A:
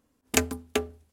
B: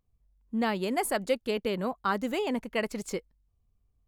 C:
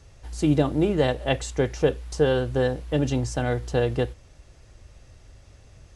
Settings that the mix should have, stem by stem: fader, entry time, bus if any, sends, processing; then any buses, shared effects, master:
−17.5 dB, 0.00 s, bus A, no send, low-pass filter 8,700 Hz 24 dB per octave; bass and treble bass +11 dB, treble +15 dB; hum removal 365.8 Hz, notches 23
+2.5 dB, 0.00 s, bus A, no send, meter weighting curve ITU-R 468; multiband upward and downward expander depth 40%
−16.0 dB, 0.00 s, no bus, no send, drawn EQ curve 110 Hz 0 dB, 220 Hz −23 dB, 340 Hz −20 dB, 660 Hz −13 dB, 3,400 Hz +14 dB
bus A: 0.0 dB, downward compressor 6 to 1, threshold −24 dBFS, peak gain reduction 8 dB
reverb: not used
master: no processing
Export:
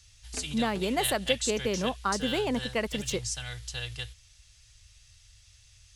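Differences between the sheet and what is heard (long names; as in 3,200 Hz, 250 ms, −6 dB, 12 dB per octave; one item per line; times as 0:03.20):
stem A: missing bass and treble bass +11 dB, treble +15 dB
stem B: missing meter weighting curve ITU-R 468
stem C −16.0 dB → −9.5 dB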